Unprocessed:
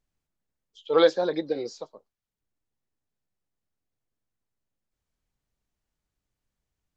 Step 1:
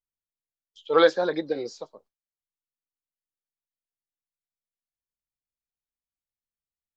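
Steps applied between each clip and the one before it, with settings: gate with hold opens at -51 dBFS; dynamic bell 1.5 kHz, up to +6 dB, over -40 dBFS, Q 1.4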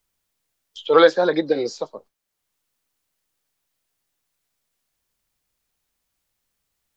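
three bands compressed up and down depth 40%; trim +7 dB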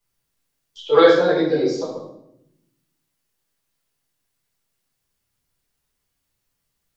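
reverberation RT60 0.75 s, pre-delay 5 ms, DRR -7.5 dB; trim -7.5 dB

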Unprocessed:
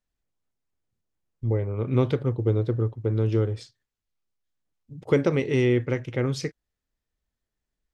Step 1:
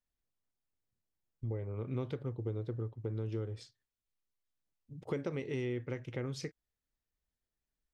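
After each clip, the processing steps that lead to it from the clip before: compression 2.5:1, threshold -30 dBFS, peak gain reduction 10 dB; trim -7 dB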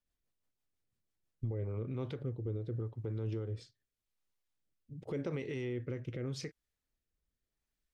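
treble shelf 6.6 kHz -3.5 dB; peak limiter -32 dBFS, peak gain reduction 7.5 dB; rotary cabinet horn 6 Hz, later 0.85 Hz, at 1.27 s; trim +4 dB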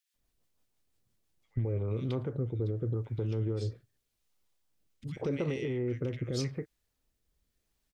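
in parallel at 0 dB: compression, threshold -45 dBFS, peak gain reduction 12 dB; on the sum: bands offset in time highs, lows 140 ms, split 1.7 kHz; trim +3 dB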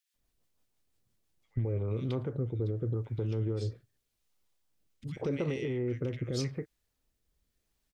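no audible change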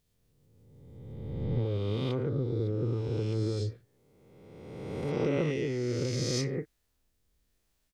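reverse spectral sustain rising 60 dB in 1.78 s

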